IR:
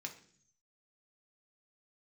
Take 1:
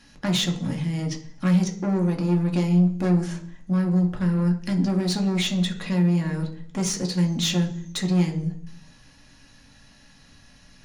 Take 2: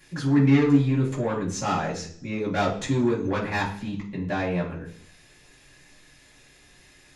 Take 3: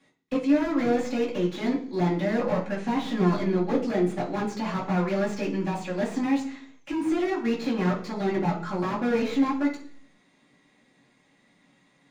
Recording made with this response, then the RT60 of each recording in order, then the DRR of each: 1; 0.50, 0.50, 0.50 seconds; 1.5, −10.5, −6.0 decibels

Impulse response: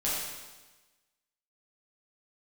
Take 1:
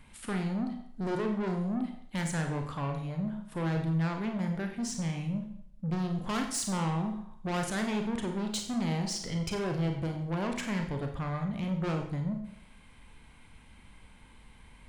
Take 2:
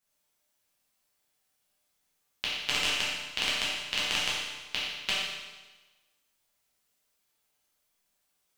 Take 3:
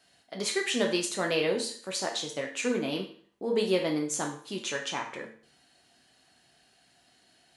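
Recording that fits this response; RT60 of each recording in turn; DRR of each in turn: 2; 0.65, 1.2, 0.50 seconds; 3.5, −8.5, 0.5 decibels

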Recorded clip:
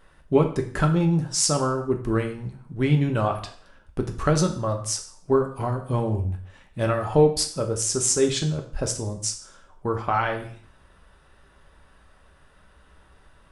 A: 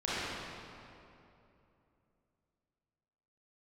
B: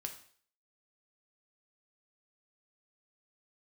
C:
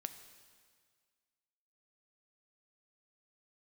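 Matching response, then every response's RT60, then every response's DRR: B; 2.8, 0.50, 1.8 seconds; −11.0, 3.5, 9.0 decibels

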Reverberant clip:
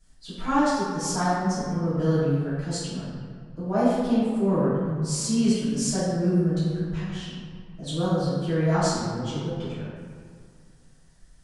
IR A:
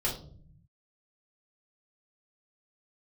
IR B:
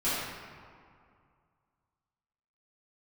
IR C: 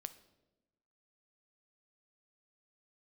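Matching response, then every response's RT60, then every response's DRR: B; 0.55, 2.2, 1.0 seconds; −4.5, −14.5, 11.5 decibels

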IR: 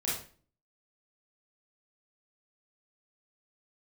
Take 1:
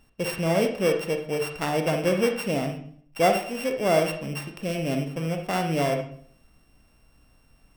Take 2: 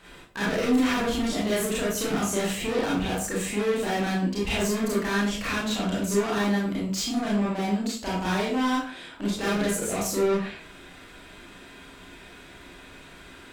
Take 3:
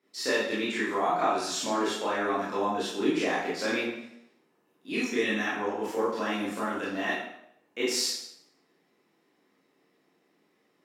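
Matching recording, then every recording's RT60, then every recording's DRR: 2; 0.55, 0.40, 0.75 seconds; 4.5, −7.0, −9.0 decibels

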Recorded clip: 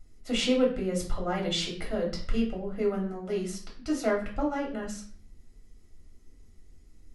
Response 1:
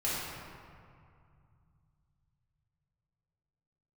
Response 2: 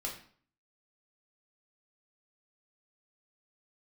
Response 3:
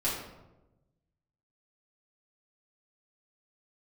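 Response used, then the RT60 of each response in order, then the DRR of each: 2; 2.3, 0.50, 1.0 seconds; −9.0, −2.5, −9.5 decibels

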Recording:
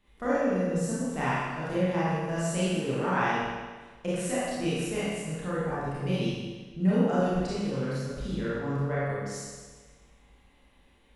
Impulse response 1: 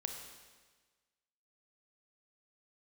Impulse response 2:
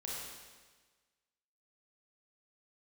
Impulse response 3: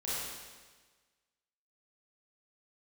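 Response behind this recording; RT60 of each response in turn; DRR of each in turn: 3; 1.4, 1.4, 1.4 seconds; 3.5, −5.5, −10.0 decibels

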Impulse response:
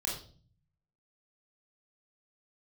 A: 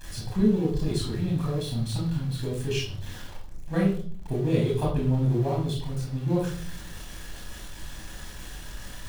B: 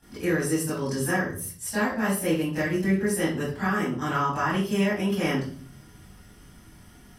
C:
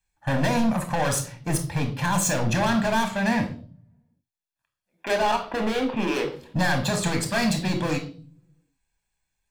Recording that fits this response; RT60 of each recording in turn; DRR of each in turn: A; 0.45, 0.45, 0.45 seconds; −3.0, −13.0, 5.5 decibels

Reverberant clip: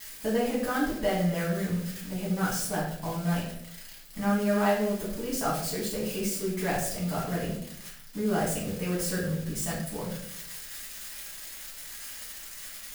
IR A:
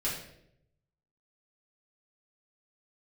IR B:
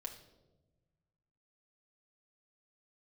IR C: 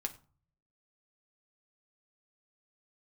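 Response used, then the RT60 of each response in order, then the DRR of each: A; 0.75, 1.1, 0.40 seconds; −8.5, 1.0, 4.5 decibels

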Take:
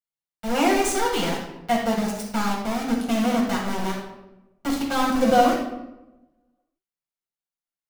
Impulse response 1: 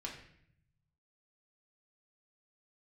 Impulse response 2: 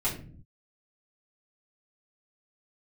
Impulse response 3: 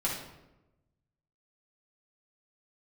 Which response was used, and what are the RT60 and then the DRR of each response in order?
3; 0.65 s, non-exponential decay, 1.0 s; −3.0, −8.5, −5.0 decibels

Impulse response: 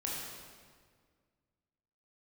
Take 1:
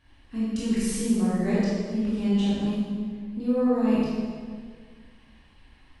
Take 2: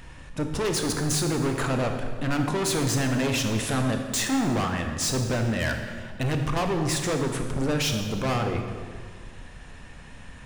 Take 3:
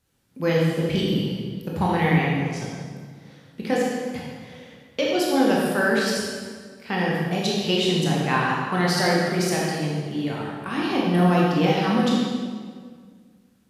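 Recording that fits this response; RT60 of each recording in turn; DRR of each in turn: 3; 1.8, 1.8, 1.8 seconds; −9.0, 4.0, −4.5 decibels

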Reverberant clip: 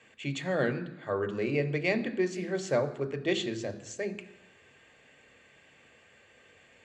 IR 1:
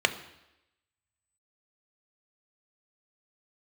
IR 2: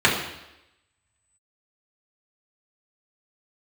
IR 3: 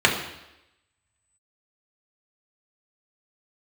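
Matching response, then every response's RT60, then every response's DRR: 1; 0.90, 0.90, 0.90 seconds; 8.0, −6.0, −1.5 decibels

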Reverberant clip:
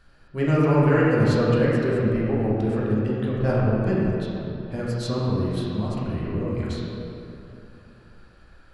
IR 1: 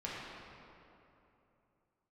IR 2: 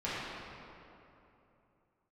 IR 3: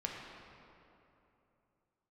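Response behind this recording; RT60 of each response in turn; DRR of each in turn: 1; 3.0, 3.0, 3.0 seconds; −7.5, −11.5, −1.5 decibels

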